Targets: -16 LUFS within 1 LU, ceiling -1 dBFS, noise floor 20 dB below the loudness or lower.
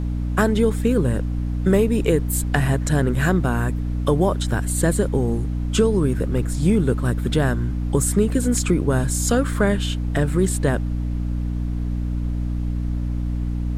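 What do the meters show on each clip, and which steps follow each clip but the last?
hum 60 Hz; harmonics up to 300 Hz; hum level -21 dBFS; noise floor -24 dBFS; noise floor target -42 dBFS; loudness -21.5 LUFS; peak -5.5 dBFS; loudness target -16.0 LUFS
-> notches 60/120/180/240/300 Hz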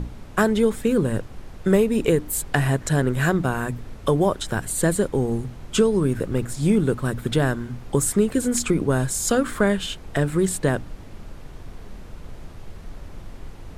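hum none; noise floor -40 dBFS; noise floor target -43 dBFS
-> noise print and reduce 6 dB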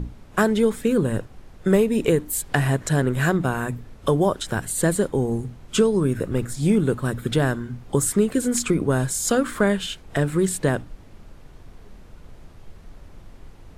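noise floor -46 dBFS; loudness -22.5 LUFS; peak -6.5 dBFS; loudness target -16.0 LUFS
-> gain +6.5 dB; limiter -1 dBFS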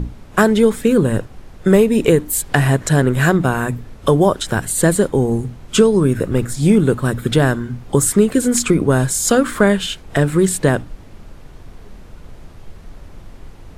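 loudness -16.0 LUFS; peak -1.0 dBFS; noise floor -39 dBFS

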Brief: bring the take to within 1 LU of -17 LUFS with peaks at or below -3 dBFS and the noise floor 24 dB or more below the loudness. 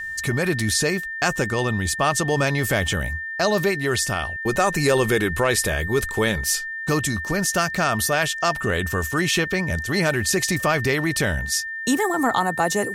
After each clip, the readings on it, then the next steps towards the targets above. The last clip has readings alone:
ticks 23/s; steady tone 1800 Hz; tone level -28 dBFS; loudness -21.5 LUFS; peak -6.5 dBFS; loudness target -17.0 LUFS
-> de-click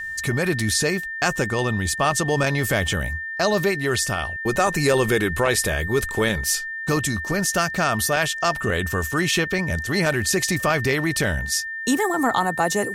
ticks 0.23/s; steady tone 1800 Hz; tone level -28 dBFS
-> notch 1800 Hz, Q 30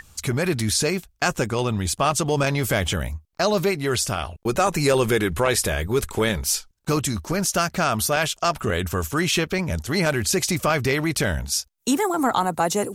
steady tone none; loudness -22.5 LUFS; peak -7.5 dBFS; loudness target -17.0 LUFS
-> gain +5.5 dB; limiter -3 dBFS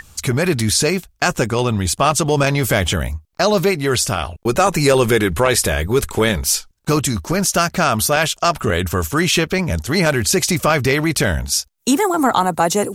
loudness -17.0 LUFS; peak -3.0 dBFS; noise floor -56 dBFS

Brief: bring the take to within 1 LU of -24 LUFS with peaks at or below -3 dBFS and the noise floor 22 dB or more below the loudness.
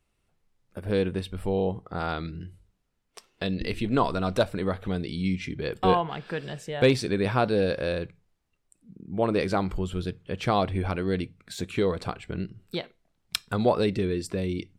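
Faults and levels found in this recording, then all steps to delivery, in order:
loudness -28.0 LUFS; peak -7.5 dBFS; loudness target -24.0 LUFS
-> gain +4 dB

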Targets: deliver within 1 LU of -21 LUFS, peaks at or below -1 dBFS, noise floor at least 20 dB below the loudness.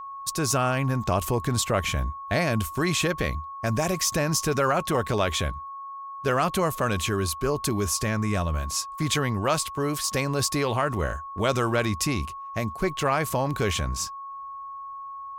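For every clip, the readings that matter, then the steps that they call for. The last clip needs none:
steady tone 1100 Hz; tone level -35 dBFS; loudness -26.0 LUFS; peak -10.5 dBFS; loudness target -21.0 LUFS
-> notch 1100 Hz, Q 30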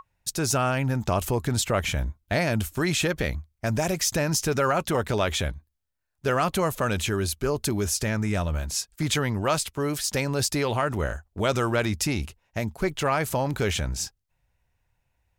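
steady tone none; loudness -26.0 LUFS; peak -11.0 dBFS; loudness target -21.0 LUFS
-> gain +5 dB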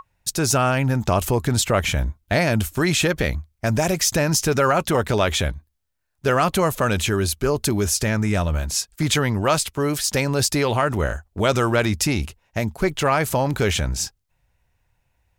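loudness -21.0 LUFS; peak -6.0 dBFS; noise floor -71 dBFS

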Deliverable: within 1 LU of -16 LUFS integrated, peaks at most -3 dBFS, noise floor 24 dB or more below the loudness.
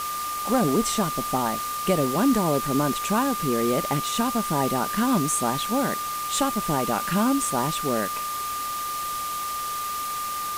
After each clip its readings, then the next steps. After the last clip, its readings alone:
steady tone 1200 Hz; tone level -28 dBFS; noise floor -30 dBFS; noise floor target -49 dBFS; loudness -24.5 LUFS; peak -8.5 dBFS; loudness target -16.0 LUFS
-> notch 1200 Hz, Q 30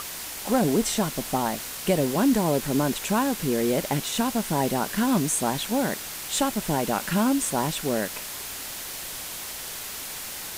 steady tone none; noise floor -36 dBFS; noise floor target -50 dBFS
-> denoiser 14 dB, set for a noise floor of -36 dBFS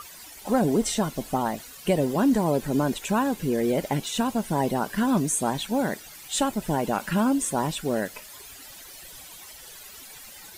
noise floor -45 dBFS; noise floor target -50 dBFS
-> denoiser 6 dB, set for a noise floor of -45 dBFS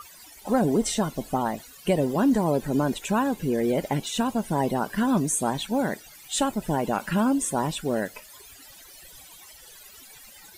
noise floor -49 dBFS; noise floor target -50 dBFS
-> denoiser 6 dB, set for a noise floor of -49 dBFS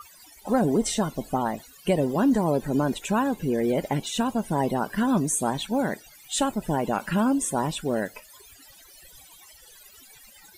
noise floor -52 dBFS; loudness -25.5 LUFS; peak -9.5 dBFS; loudness target -16.0 LUFS
-> gain +9.5 dB; limiter -3 dBFS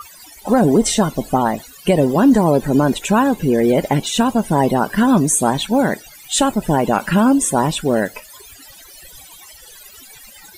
loudness -16.5 LUFS; peak -3.0 dBFS; noise floor -42 dBFS

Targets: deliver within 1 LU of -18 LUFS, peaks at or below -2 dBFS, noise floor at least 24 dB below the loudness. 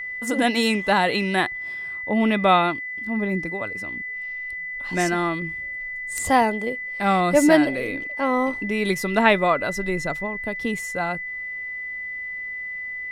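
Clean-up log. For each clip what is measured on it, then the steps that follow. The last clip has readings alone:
steady tone 2000 Hz; tone level -29 dBFS; loudness -23.0 LUFS; peak -2.5 dBFS; loudness target -18.0 LUFS
-> notch 2000 Hz, Q 30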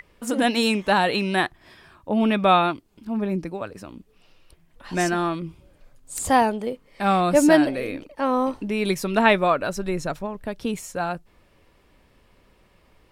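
steady tone none; loudness -22.5 LUFS; peak -3.0 dBFS; loudness target -18.0 LUFS
-> gain +4.5 dB; limiter -2 dBFS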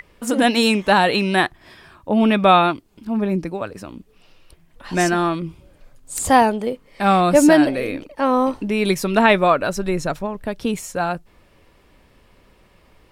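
loudness -18.5 LUFS; peak -2.0 dBFS; noise floor -55 dBFS

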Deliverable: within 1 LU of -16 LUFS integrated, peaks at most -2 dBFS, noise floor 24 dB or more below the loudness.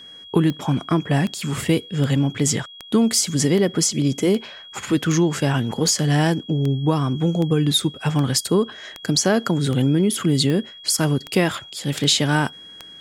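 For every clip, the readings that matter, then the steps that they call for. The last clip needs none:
clicks 17; steady tone 3300 Hz; tone level -39 dBFS; loudness -20.5 LUFS; peak -3.5 dBFS; loudness target -16.0 LUFS
-> de-click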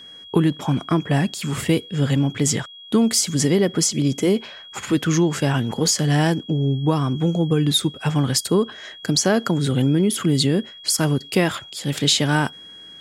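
clicks 0; steady tone 3300 Hz; tone level -39 dBFS
-> notch 3300 Hz, Q 30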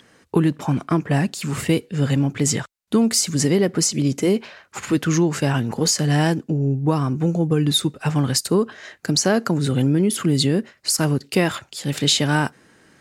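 steady tone none; loudness -20.5 LUFS; peak -3.5 dBFS; loudness target -16.0 LUFS
-> gain +4.5 dB; limiter -2 dBFS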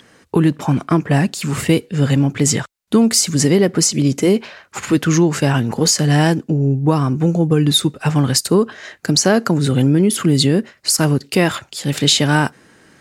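loudness -16.0 LUFS; peak -2.0 dBFS; noise floor -55 dBFS

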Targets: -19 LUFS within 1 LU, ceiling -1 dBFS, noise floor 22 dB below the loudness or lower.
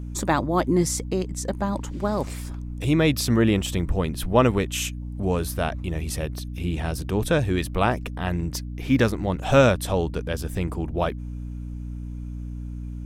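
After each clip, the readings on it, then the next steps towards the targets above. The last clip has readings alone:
hum 60 Hz; harmonics up to 300 Hz; hum level -30 dBFS; loudness -24.5 LUFS; peak -4.5 dBFS; loudness target -19.0 LUFS
-> de-hum 60 Hz, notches 5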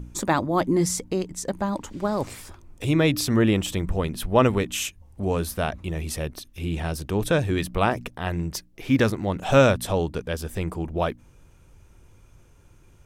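hum none; loudness -25.0 LUFS; peak -5.0 dBFS; loudness target -19.0 LUFS
-> gain +6 dB; limiter -1 dBFS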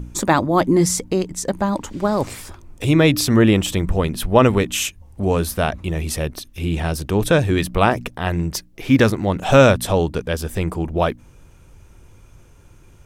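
loudness -19.0 LUFS; peak -1.0 dBFS; noise floor -48 dBFS

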